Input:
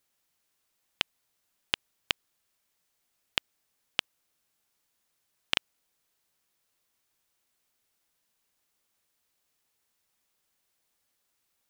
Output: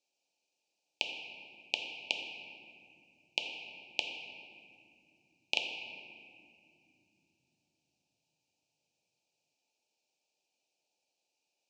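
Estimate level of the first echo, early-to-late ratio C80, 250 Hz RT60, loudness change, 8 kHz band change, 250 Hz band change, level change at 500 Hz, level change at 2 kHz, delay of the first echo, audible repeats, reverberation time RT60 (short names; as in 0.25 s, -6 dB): none, 4.5 dB, 5.3 s, -4.0 dB, -4.5 dB, -4.5 dB, 0.0 dB, -1.0 dB, none, none, 2.8 s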